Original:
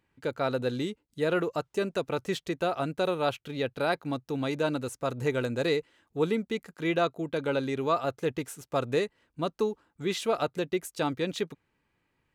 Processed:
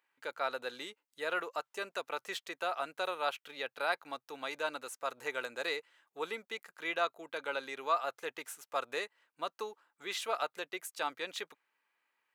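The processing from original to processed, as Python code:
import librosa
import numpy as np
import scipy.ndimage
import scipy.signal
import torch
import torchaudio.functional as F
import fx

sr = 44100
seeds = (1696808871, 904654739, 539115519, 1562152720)

y = scipy.signal.sosfilt(scipy.signal.butter(2, 1000.0, 'highpass', fs=sr, output='sos'), x)
y = fx.peak_eq(y, sr, hz=5800.0, db=-5.5, octaves=2.9)
y = F.gain(torch.from_numpy(y), 1.5).numpy()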